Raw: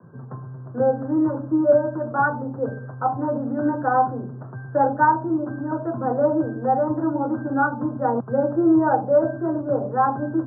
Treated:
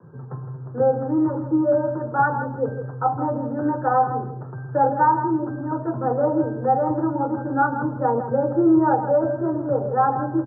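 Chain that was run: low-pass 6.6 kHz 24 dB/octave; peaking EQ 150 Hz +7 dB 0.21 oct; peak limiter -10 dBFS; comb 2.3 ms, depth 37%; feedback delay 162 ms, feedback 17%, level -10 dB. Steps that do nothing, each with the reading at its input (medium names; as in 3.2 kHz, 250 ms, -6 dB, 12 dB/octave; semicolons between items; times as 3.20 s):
low-pass 6.6 kHz: input has nothing above 1.6 kHz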